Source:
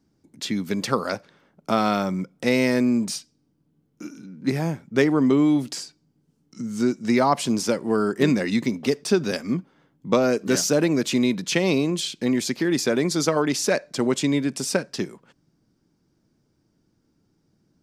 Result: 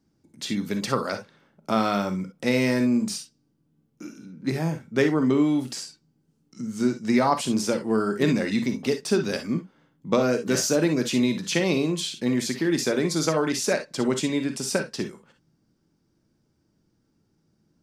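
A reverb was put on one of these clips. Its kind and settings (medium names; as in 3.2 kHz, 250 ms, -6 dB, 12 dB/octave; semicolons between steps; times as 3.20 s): gated-style reverb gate 80 ms rising, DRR 6.5 dB; trim -2.5 dB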